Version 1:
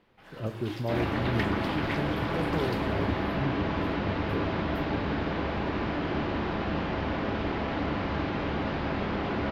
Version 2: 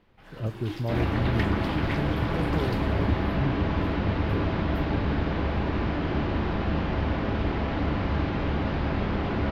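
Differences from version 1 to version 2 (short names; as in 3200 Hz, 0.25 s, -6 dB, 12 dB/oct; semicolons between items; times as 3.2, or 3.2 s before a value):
speech: send -11.5 dB; master: add low shelf 120 Hz +11.5 dB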